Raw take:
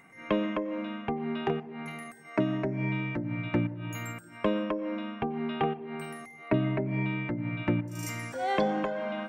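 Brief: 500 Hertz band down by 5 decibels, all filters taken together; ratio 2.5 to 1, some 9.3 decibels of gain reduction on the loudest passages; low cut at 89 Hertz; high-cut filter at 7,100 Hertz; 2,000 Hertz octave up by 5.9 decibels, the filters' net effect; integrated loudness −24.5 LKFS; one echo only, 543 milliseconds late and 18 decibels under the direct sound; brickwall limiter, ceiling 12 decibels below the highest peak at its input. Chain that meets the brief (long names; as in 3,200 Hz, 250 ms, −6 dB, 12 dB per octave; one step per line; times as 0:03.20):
high-pass filter 89 Hz
low-pass filter 7,100 Hz
parametric band 500 Hz −7 dB
parametric band 2,000 Hz +7.5 dB
downward compressor 2.5 to 1, threshold −38 dBFS
brickwall limiter −30.5 dBFS
single-tap delay 543 ms −18 dB
level +15.5 dB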